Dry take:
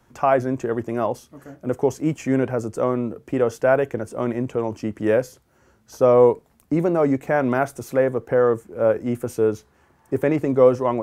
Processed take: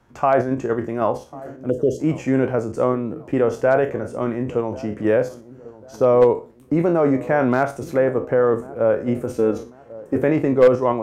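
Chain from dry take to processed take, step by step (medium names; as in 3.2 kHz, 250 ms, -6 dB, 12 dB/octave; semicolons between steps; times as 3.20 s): spectral sustain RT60 0.31 s; low-pass 3.6 kHz 6 dB/octave; 1.70–2.00 s: spectral selection erased 650–2700 Hz; 9.36–10.16 s: comb 3.8 ms, depth 64%; in parallel at +2.5 dB: level held to a coarse grid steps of 11 dB; on the sum: hard clipper -2 dBFS, distortion -24 dB; on a send: feedback echo behind a low-pass 1094 ms, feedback 37%, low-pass 960 Hz, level -18.5 dB; on the sum: trim -4 dB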